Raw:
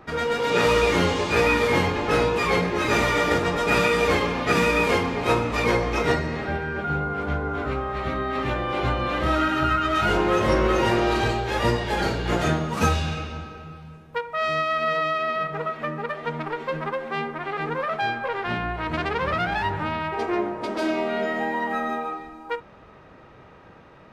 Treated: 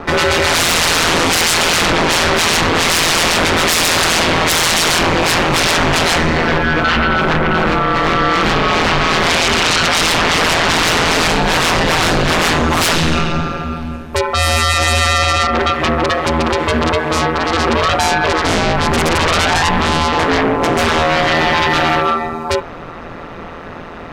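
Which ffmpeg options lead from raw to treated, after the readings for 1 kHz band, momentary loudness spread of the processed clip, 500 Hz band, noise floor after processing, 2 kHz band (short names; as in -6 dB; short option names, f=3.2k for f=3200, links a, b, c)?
+10.0 dB, 7 LU, +6.5 dB, -30 dBFS, +11.5 dB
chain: -af "bandreject=f=66:t=h:w=4,bandreject=f=132:t=h:w=4,bandreject=f=198:t=h:w=4,bandreject=f=264:t=h:w=4,bandreject=f=330:t=h:w=4,bandreject=f=396:t=h:w=4,bandreject=f=462:t=h:w=4,bandreject=f=528:t=h:w=4,bandreject=f=594:t=h:w=4,bandreject=f=660:t=h:w=4,bandreject=f=726:t=h:w=4,bandreject=f=792:t=h:w=4,bandreject=f=858:t=h:w=4,aeval=exprs='0.422*sin(PI/2*7.94*val(0)/0.422)':c=same,aeval=exprs='val(0)*sin(2*PI*83*n/s)':c=same"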